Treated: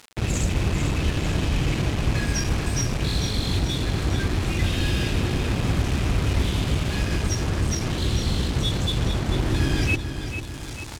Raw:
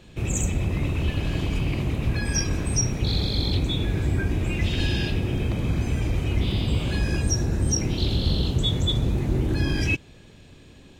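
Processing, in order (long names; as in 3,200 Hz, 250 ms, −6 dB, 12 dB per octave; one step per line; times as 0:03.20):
linear delta modulator 64 kbit/s, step −28 dBFS
notch filter 890 Hz, Q 23
speech leveller within 4 dB 2 s
bit reduction 5 bits
high-frequency loss of the air 53 metres
repeating echo 445 ms, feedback 57%, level −9 dB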